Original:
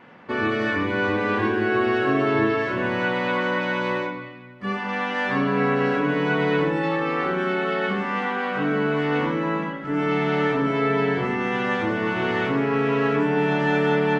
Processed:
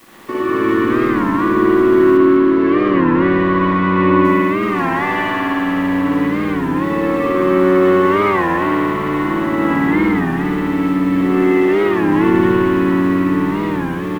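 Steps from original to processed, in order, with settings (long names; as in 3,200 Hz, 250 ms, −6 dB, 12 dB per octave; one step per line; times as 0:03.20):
compressor whose output falls as the input rises −29 dBFS, ratio −1
hollow resonant body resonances 330/1,100/1,900 Hz, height 14 dB, ringing for 45 ms
dead-zone distortion −39.5 dBFS
bit-depth reduction 8 bits, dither triangular
0:02.17–0:04.25: band-pass filter 120–3,600 Hz
echo with shifted repeats 195 ms, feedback 37%, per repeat −93 Hz, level −8 dB
spring reverb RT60 3.8 s, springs 54 ms, chirp 25 ms, DRR −8 dB
wow of a warped record 33 1/3 rpm, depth 160 cents
level −3 dB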